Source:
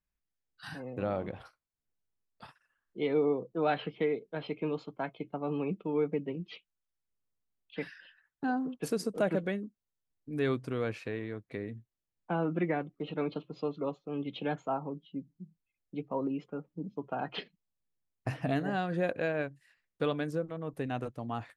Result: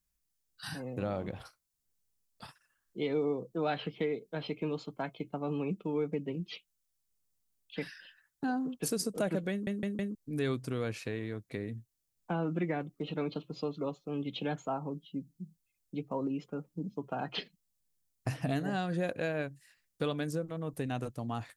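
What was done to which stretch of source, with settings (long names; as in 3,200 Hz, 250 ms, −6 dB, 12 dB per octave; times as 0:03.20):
0:09.51: stutter in place 0.16 s, 4 plays
whole clip: bass and treble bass +4 dB, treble +12 dB; downward compressor 1.5 to 1, threshold −34 dBFS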